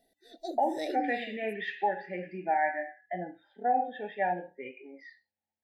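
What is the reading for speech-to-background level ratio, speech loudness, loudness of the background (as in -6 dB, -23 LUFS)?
7.0 dB, -32.5 LUFS, -39.5 LUFS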